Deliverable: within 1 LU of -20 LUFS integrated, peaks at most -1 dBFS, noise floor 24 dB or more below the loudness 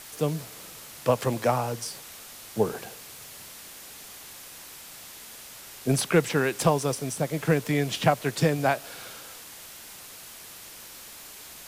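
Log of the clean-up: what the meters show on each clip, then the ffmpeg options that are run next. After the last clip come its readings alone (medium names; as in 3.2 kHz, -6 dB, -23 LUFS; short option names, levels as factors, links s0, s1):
noise floor -45 dBFS; noise floor target -51 dBFS; loudness -26.5 LUFS; peak level -6.5 dBFS; loudness target -20.0 LUFS
-> -af "afftdn=nr=6:nf=-45"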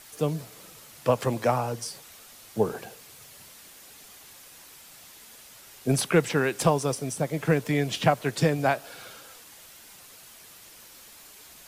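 noise floor -50 dBFS; noise floor target -51 dBFS
-> -af "afftdn=nr=6:nf=-50"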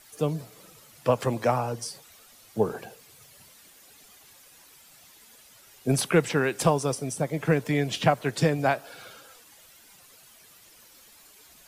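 noise floor -54 dBFS; loudness -26.5 LUFS; peak level -6.5 dBFS; loudness target -20.0 LUFS
-> -af "volume=2.11,alimiter=limit=0.891:level=0:latency=1"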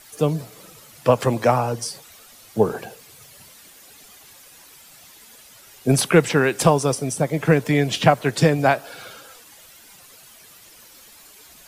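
loudness -20.0 LUFS; peak level -1.0 dBFS; noise floor -48 dBFS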